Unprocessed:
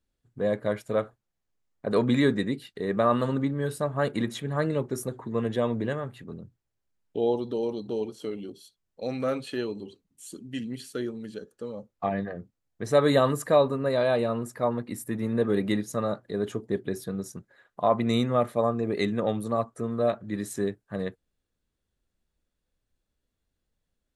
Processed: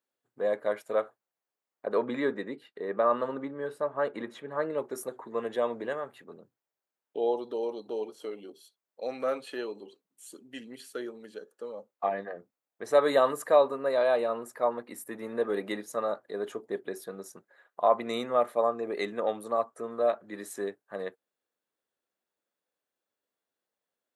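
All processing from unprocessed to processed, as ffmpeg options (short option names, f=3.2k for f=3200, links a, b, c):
-filter_complex "[0:a]asettb=1/sr,asplit=3[a][b][c];[a]atrim=end=1.874[d];[b]atrim=start=1.87:end=4.78,asetpts=PTS-STARTPTS,afade=t=in:d=0.004:c=qsin,afade=t=out:st=2.906:d=0.004:c=qsin,lowpass=f=1.8k:p=1,bandreject=f=730:w=13[e];[c]atrim=start=4.776[f];[d][e]acrossfade=d=0.004:c1=hsin:c2=qsin[g];[g][f]acrossfade=d=0.004:c1=qsin:c2=hsin,highpass=550,equalizer=f=5.3k:w=0.32:g=-8.5,volume=3dB"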